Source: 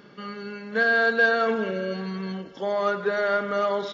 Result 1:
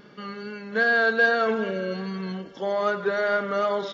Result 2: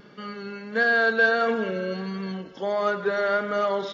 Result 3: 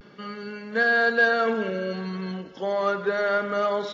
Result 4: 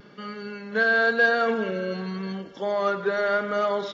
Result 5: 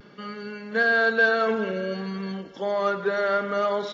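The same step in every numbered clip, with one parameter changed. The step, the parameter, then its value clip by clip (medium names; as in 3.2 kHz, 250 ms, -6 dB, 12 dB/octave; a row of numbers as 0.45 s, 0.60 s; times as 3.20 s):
vibrato, rate: 2.5 Hz, 1.5 Hz, 0.3 Hz, 0.91 Hz, 0.56 Hz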